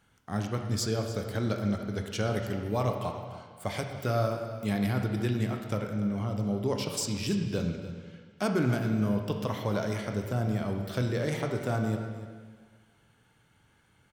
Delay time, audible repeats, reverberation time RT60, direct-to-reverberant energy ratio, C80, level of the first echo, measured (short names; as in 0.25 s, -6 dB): 0.293 s, 1, 1.6 s, 3.0 dB, 6.0 dB, -15.0 dB